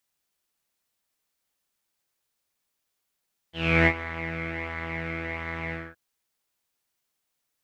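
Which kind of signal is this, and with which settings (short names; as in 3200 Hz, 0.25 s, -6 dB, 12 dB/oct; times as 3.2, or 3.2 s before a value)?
synth patch with pulse-width modulation E3, sub -7 dB, noise -7.5 dB, filter lowpass, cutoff 1600 Hz, Q 8.8, filter envelope 1 oct, attack 0.328 s, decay 0.07 s, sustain -15 dB, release 0.22 s, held 2.20 s, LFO 1.4 Hz, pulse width 12%, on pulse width 6%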